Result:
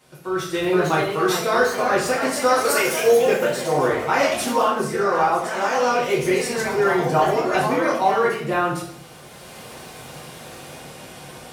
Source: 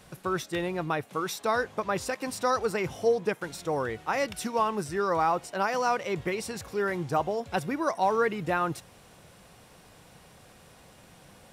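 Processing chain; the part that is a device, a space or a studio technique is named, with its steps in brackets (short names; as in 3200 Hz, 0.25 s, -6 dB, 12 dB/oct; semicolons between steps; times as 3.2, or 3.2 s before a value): 2.59–3 RIAA curve recording; echoes that change speed 0.498 s, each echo +2 st, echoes 3, each echo -6 dB; far laptop microphone (reverb RT60 0.65 s, pre-delay 3 ms, DRR -5 dB; HPF 190 Hz 6 dB/oct; AGC gain up to 14.5 dB); gain -5.5 dB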